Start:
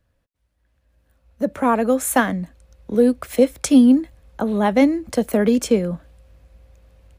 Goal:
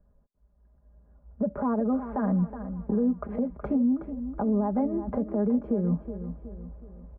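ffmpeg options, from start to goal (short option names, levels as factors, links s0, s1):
-filter_complex "[0:a]lowpass=f=1100:w=0.5412,lowpass=f=1100:w=1.3066,lowshelf=f=230:g=5,aecho=1:1:4.9:0.77,acompressor=threshold=0.1:ratio=6,alimiter=limit=0.119:level=0:latency=1:release=79,asplit=2[s0][s1];[s1]aecho=0:1:370|740|1110|1480|1850:0.282|0.124|0.0546|0.024|0.0106[s2];[s0][s2]amix=inputs=2:normalize=0"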